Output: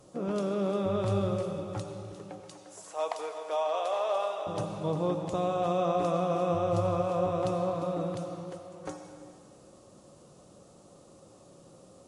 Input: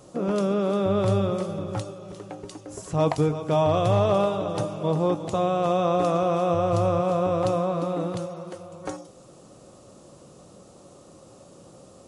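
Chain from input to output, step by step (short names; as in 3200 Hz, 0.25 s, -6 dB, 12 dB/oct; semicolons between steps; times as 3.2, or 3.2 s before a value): 2.4–4.47 HPF 540 Hz 24 dB/oct; reverb RT60 2.2 s, pre-delay 79 ms, DRR 6.5 dB; gain -6.5 dB; Vorbis 64 kbps 48000 Hz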